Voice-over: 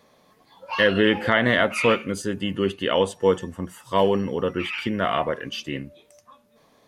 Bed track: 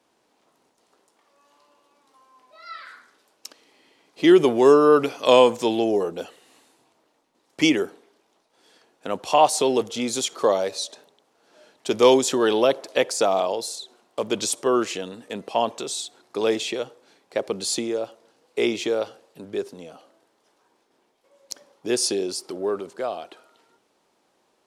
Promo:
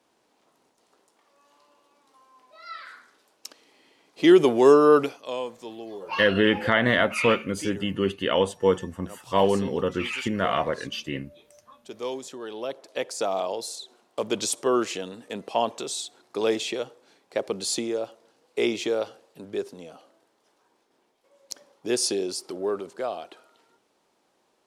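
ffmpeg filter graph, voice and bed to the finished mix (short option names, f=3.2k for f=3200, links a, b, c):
-filter_complex "[0:a]adelay=5400,volume=-1.5dB[a];[1:a]volume=14dB,afade=t=out:st=4.99:d=0.23:silence=0.158489,afade=t=in:st=12.51:d=1.45:silence=0.177828[b];[a][b]amix=inputs=2:normalize=0"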